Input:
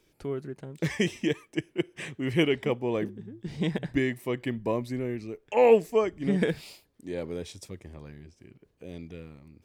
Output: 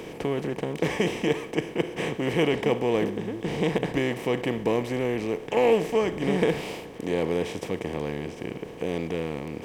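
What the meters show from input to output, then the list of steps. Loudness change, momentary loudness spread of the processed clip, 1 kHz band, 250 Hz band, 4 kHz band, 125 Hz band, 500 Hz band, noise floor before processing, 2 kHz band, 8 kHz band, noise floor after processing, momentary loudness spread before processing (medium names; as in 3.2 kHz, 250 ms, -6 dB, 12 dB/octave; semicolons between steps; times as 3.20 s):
+1.5 dB, 8 LU, +3.5 dB, +2.5 dB, +3.5 dB, +2.0 dB, +2.5 dB, -69 dBFS, +3.5 dB, no reading, -41 dBFS, 20 LU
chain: spectral levelling over time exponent 0.4; trim -4 dB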